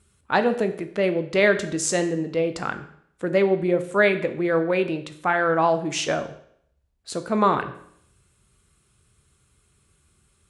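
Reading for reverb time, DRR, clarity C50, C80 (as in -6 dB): 0.65 s, 8.5 dB, 12.5 dB, 15.5 dB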